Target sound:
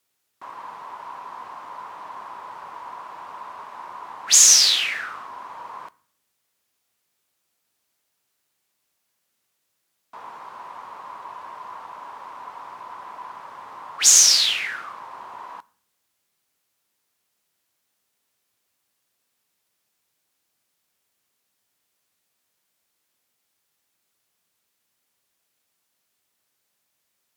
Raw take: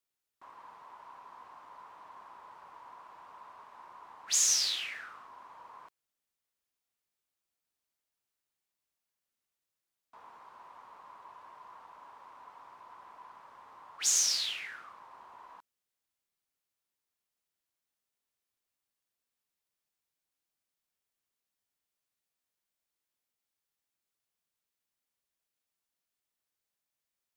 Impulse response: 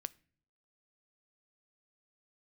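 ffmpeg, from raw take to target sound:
-filter_complex "[0:a]asplit=2[a][b];[b]highpass=72[c];[1:a]atrim=start_sample=2205,asetrate=33075,aresample=44100[d];[c][d]afir=irnorm=-1:irlink=0,volume=12dB[e];[a][e]amix=inputs=2:normalize=0,volume=1.5dB"

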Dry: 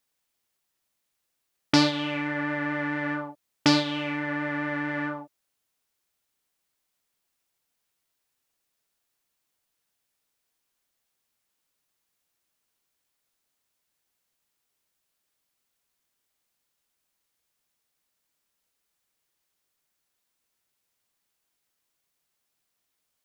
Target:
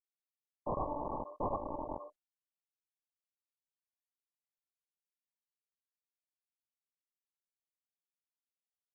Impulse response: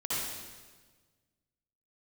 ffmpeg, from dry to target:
-filter_complex "[0:a]highpass=990,agate=range=-44dB:threshold=-35dB:ratio=16:detection=peak,lowpass=f=5.6k:w=0.5412,lowpass=f=5.6k:w=1.3066,aecho=1:1:46.65|256.6:0.251|0.708,atempo=1.3,asplit=2[a][b];[b]adelay=46,volume=-12dB[c];[a][c]amix=inputs=2:normalize=0[d];[1:a]atrim=start_sample=2205,atrim=end_sample=3087,asetrate=70560,aresample=44100[e];[d][e]afir=irnorm=-1:irlink=0,aeval=exprs='(mod(22.4*val(0)+1,2)-1)/22.4':c=same,asetrate=88200,aresample=44100,volume=12.5dB" -ar 24000 -c:a mp2 -b:a 8k

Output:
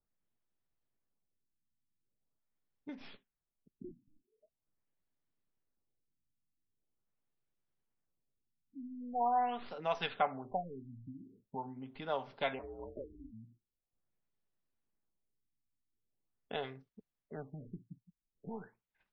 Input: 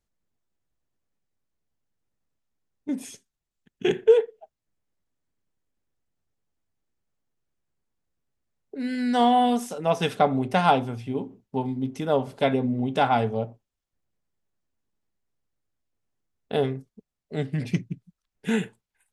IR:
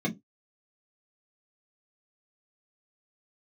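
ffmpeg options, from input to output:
-filter_complex "[0:a]asplit=3[a][b][c];[a]afade=t=out:st=12.58:d=0.02[d];[b]aeval=exprs='val(0)*sin(2*PI*180*n/s)':c=same,afade=t=in:st=12.58:d=0.02,afade=t=out:st=13.31:d=0.02[e];[c]afade=t=in:st=13.31:d=0.02[f];[d][e][f]amix=inputs=3:normalize=0,acrossover=split=690|4800[g][h][i];[g]acompressor=threshold=-39dB:ratio=6[j];[i]aeval=exprs='abs(val(0))':c=same[k];[j][h][k]amix=inputs=3:normalize=0,equalizer=f=65:t=o:w=0.77:g=-6.5,afftfilt=real='re*lt(b*sr/1024,300*pow(6300/300,0.5+0.5*sin(2*PI*0.43*pts/sr)))':imag='im*lt(b*sr/1024,300*pow(6300/300,0.5+0.5*sin(2*PI*0.43*pts/sr)))':win_size=1024:overlap=0.75,volume=-6.5dB"

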